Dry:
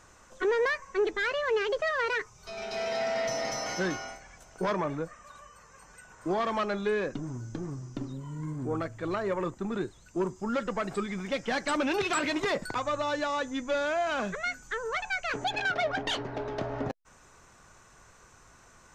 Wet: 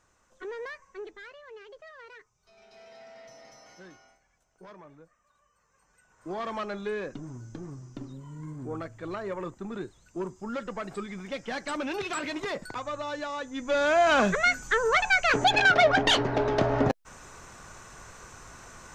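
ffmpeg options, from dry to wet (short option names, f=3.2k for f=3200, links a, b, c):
-af "volume=17dB,afade=t=out:st=0.84:d=0.54:silence=0.398107,afade=t=in:st=5.37:d=0.75:silence=0.421697,afade=t=in:st=6.12:d=0.34:silence=0.398107,afade=t=in:st=13.52:d=0.61:silence=0.223872"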